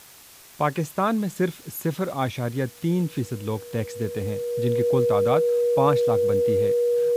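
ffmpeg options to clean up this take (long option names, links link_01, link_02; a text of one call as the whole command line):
ffmpeg -i in.wav -af "adeclick=threshold=4,bandreject=frequency=480:width=30,afwtdn=0.0045" out.wav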